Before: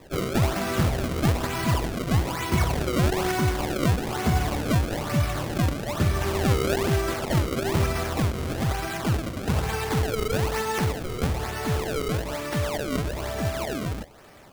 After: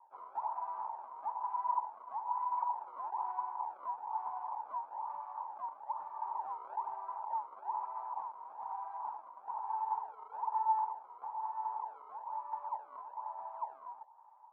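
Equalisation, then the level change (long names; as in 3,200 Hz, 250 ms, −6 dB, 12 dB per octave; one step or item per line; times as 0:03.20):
flat-topped band-pass 920 Hz, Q 6.4
+3.0 dB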